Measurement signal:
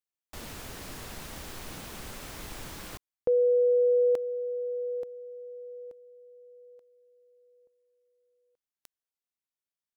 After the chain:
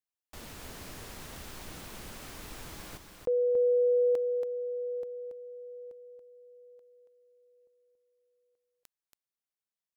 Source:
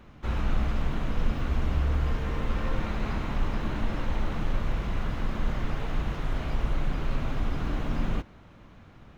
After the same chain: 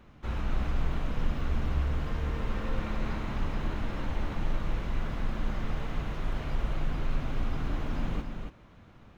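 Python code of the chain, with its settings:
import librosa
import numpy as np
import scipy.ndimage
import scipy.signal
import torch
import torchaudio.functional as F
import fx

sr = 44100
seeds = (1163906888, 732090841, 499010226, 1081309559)

y = x + 10.0 ** (-6.0 / 20.0) * np.pad(x, (int(280 * sr / 1000.0), 0))[:len(x)]
y = y * librosa.db_to_amplitude(-4.0)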